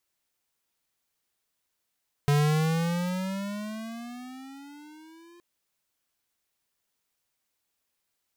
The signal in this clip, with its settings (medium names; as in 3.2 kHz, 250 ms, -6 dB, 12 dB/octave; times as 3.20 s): gliding synth tone square, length 3.12 s, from 143 Hz, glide +15.5 st, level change -32 dB, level -21 dB